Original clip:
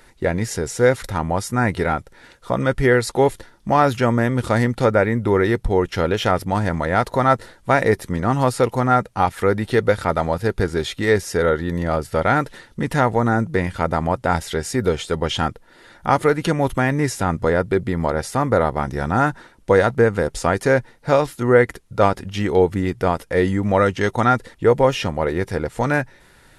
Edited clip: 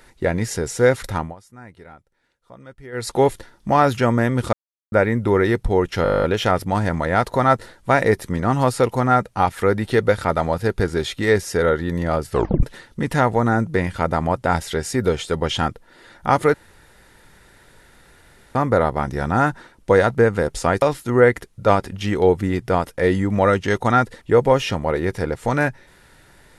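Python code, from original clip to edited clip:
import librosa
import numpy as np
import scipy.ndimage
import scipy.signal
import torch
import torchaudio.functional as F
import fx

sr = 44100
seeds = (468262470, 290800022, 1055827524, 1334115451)

y = fx.edit(x, sr, fx.fade_down_up(start_s=1.16, length_s=1.95, db=-22.5, fade_s=0.19),
    fx.silence(start_s=4.53, length_s=0.39),
    fx.stutter(start_s=6.03, slice_s=0.02, count=11),
    fx.tape_stop(start_s=12.12, length_s=0.31),
    fx.room_tone_fill(start_s=16.34, length_s=2.01),
    fx.cut(start_s=20.62, length_s=0.53), tone=tone)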